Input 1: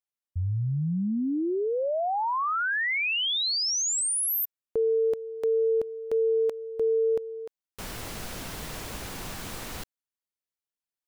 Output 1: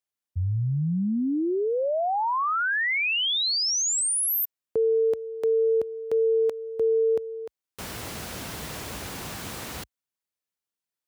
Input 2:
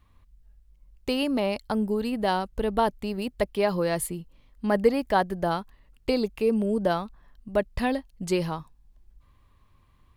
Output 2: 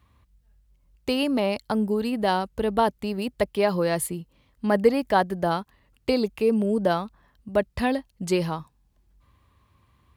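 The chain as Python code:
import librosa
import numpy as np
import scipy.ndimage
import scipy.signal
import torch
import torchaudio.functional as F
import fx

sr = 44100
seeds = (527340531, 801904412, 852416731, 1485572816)

y = scipy.signal.sosfilt(scipy.signal.butter(4, 54.0, 'highpass', fs=sr, output='sos'), x)
y = y * 10.0 ** (2.0 / 20.0)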